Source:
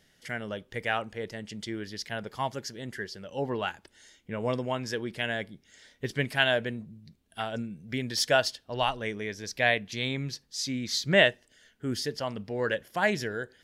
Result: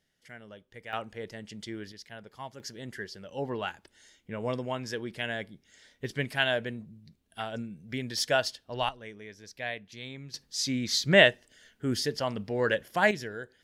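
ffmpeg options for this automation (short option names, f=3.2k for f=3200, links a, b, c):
-af "asetnsamples=n=441:p=0,asendcmd='0.93 volume volume -3.5dB;1.92 volume volume -10.5dB;2.6 volume volume -2.5dB;8.89 volume volume -11dB;10.34 volume volume 2dB;13.11 volume volume -5dB',volume=-12.5dB"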